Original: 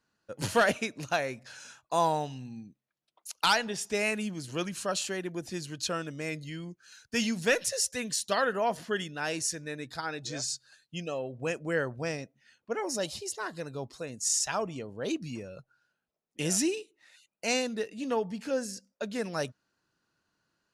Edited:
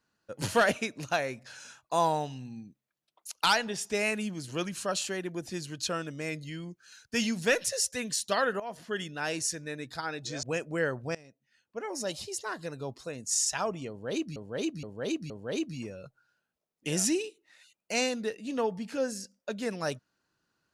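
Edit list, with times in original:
0:08.60–0:09.09: fade in, from −15.5 dB
0:10.43–0:11.37: remove
0:12.09–0:13.25: fade in, from −21.5 dB
0:14.83–0:15.30: repeat, 4 plays

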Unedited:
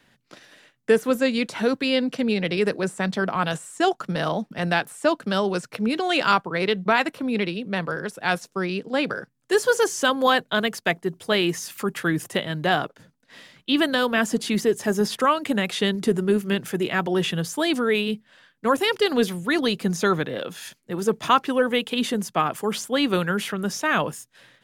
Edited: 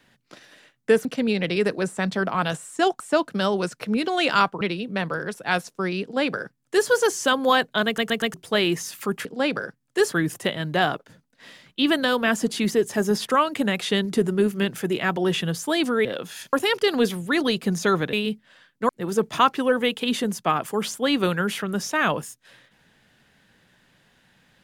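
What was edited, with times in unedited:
0:01.05–0:02.06: remove
0:04.01–0:04.92: remove
0:06.53–0:07.38: remove
0:08.79–0:09.66: duplicate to 0:12.02
0:10.63: stutter in place 0.12 s, 4 plays
0:17.95–0:18.71: swap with 0:20.31–0:20.79

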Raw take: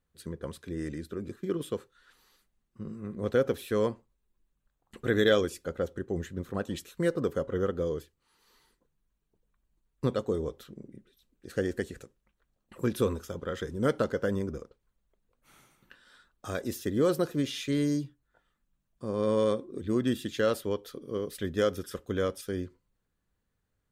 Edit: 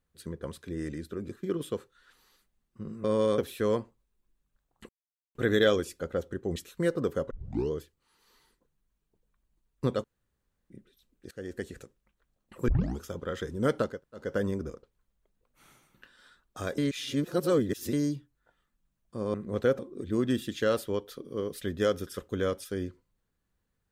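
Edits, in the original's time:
0:03.04–0:03.49: swap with 0:19.22–0:19.56
0:05.00: splice in silence 0.46 s
0:06.21–0:06.76: remove
0:07.51: tape start 0.41 s
0:10.24–0:10.90: fill with room tone
0:11.51–0:12.00: fade in, from −20 dB
0:12.88: tape start 0.32 s
0:14.12: splice in room tone 0.32 s, crossfade 0.24 s
0:16.66–0:17.81: reverse

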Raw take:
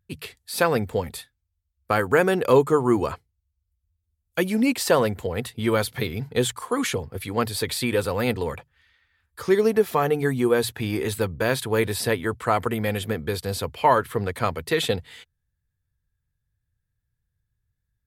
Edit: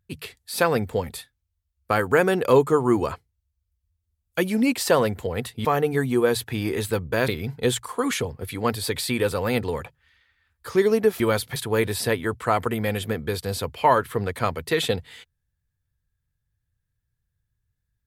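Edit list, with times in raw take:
0:05.65–0:06.01: swap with 0:09.93–0:11.56

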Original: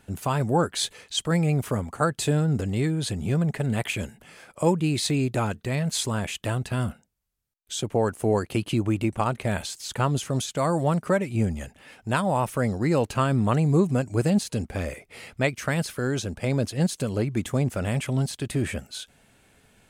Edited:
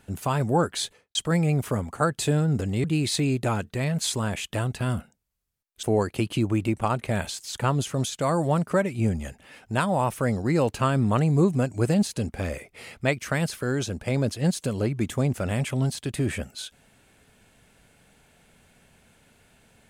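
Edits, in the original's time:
0:00.74–0:01.15: fade out and dull
0:02.84–0:04.75: remove
0:07.74–0:08.19: remove

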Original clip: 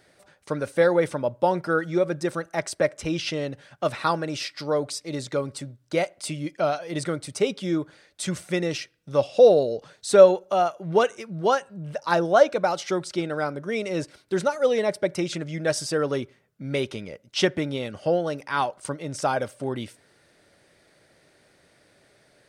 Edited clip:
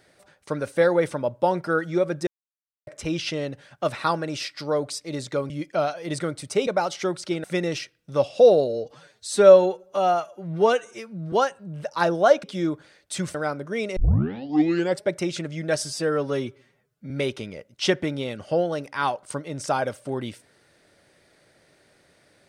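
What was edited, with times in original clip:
0:02.27–0:02.87: silence
0:05.50–0:06.35: remove
0:07.52–0:08.43: swap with 0:12.54–0:13.31
0:09.66–0:11.43: time-stretch 1.5×
0:13.93: tape start 1.07 s
0:15.81–0:16.65: time-stretch 1.5×

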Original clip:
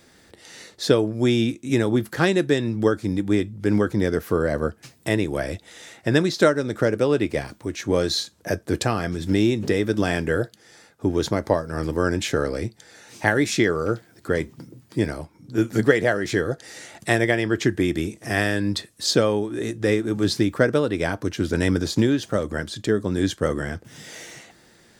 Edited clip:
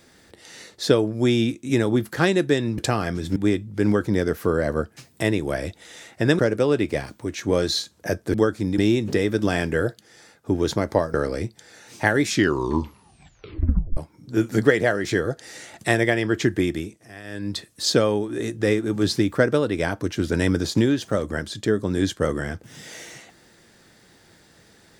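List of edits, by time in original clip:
0:02.78–0:03.22: swap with 0:08.75–0:09.33
0:06.25–0:06.80: remove
0:11.69–0:12.35: remove
0:13.49: tape stop 1.69 s
0:17.82–0:18.91: duck −19 dB, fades 0.47 s linear

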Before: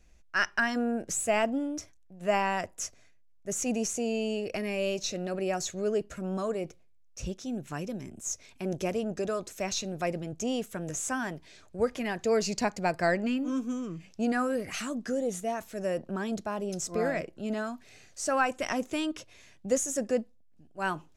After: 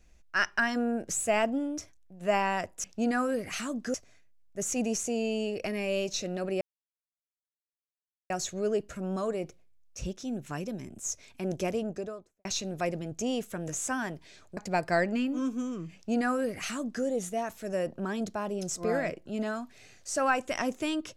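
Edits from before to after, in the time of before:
0:05.51: splice in silence 1.69 s
0:08.91–0:09.66: fade out and dull
0:11.78–0:12.68: remove
0:14.05–0:15.15: duplicate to 0:02.84

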